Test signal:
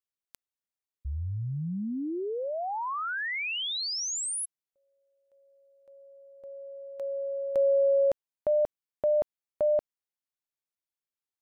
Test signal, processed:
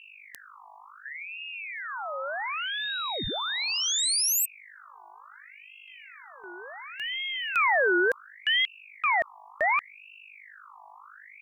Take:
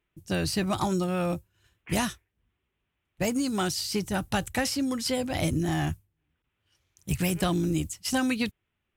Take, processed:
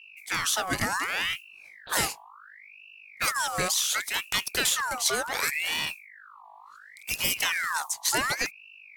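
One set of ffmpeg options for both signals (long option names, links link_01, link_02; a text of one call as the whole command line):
ffmpeg -i in.wav -af "aeval=exprs='val(0)+0.00794*(sin(2*PI*50*n/s)+sin(2*PI*2*50*n/s)/2+sin(2*PI*3*50*n/s)/3+sin(2*PI*4*50*n/s)/4+sin(2*PI*5*50*n/s)/5)':channel_layout=same,bass=frequency=250:gain=-8,treble=frequency=4000:gain=7,aeval=exprs='val(0)*sin(2*PI*1800*n/s+1800*0.5/0.69*sin(2*PI*0.69*n/s))':channel_layout=same,volume=3.5dB" out.wav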